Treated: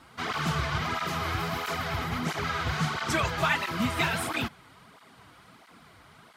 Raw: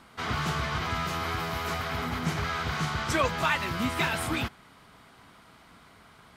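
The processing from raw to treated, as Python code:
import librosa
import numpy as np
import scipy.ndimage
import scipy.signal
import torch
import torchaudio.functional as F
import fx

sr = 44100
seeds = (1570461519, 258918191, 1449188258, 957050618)

y = fx.flanger_cancel(x, sr, hz=1.5, depth_ms=5.3)
y = F.gain(torch.from_numpy(y), 3.5).numpy()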